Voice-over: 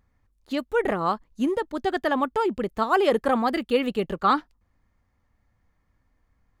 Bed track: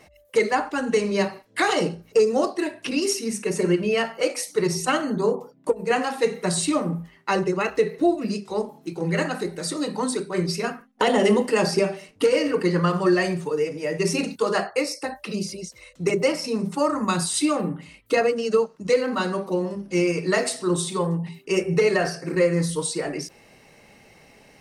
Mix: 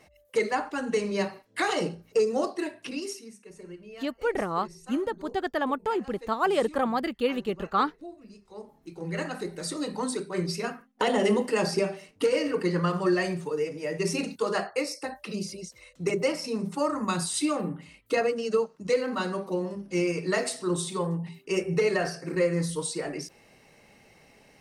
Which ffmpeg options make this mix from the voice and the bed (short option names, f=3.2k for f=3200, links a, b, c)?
-filter_complex "[0:a]adelay=3500,volume=-4dB[a];[1:a]volume=12.5dB,afade=t=out:st=2.63:d=0.73:silence=0.133352,afade=t=in:st=8.41:d=1.19:silence=0.125893[b];[a][b]amix=inputs=2:normalize=0"